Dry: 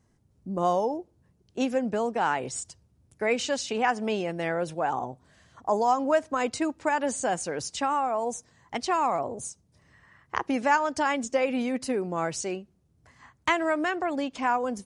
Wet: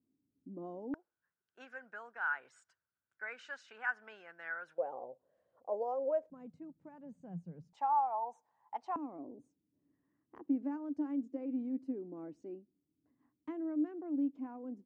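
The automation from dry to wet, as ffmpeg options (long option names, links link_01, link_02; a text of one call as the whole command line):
ffmpeg -i in.wav -af "asetnsamples=nb_out_samples=441:pad=0,asendcmd='0.94 bandpass f 1500;4.78 bandpass f 530;6.3 bandpass f 170;7.73 bandpass f 870;8.96 bandpass f 290',bandpass=frequency=280:width_type=q:width=8.6:csg=0" out.wav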